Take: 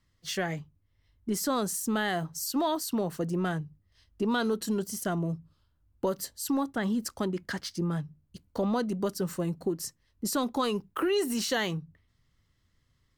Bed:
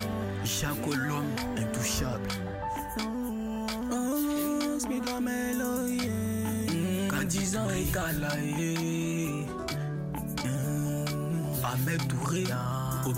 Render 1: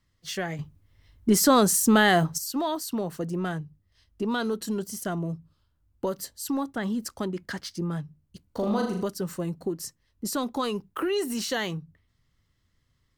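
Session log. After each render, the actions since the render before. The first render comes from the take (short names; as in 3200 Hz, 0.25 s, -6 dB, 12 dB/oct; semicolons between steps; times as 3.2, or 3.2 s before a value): 0.59–2.38 gain +10 dB; 8.47–9.03 flutter echo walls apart 6.7 m, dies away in 0.59 s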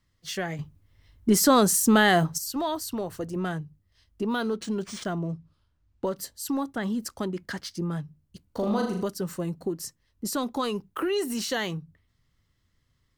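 2.46–3.36 resonant low shelf 130 Hz +7 dB, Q 3; 4.24–6.17 decimation joined by straight lines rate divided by 3×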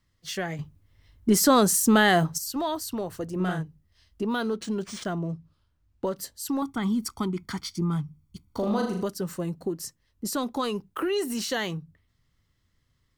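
3.35–4.23 doubler 44 ms -3 dB; 6.62–8.59 comb 0.9 ms, depth 78%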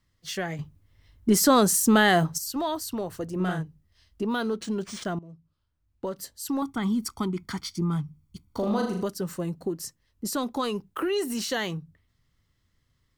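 5.19–6.59 fade in, from -18 dB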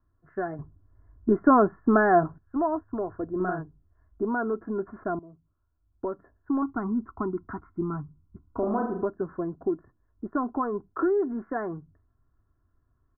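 steep low-pass 1600 Hz 72 dB/oct; comb 2.9 ms, depth 57%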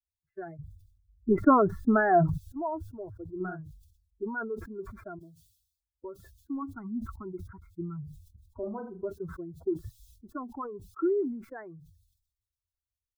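per-bin expansion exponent 2; sustainer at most 72 dB/s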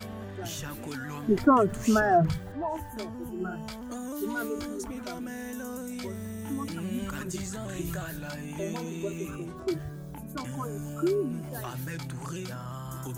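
add bed -7 dB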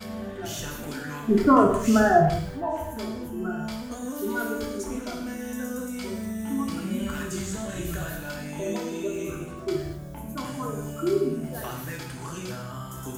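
non-linear reverb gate 0.28 s falling, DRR -1 dB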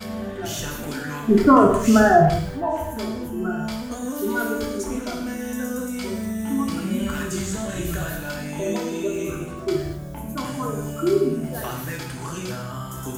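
gain +4.5 dB; limiter -3 dBFS, peak gain reduction 2.5 dB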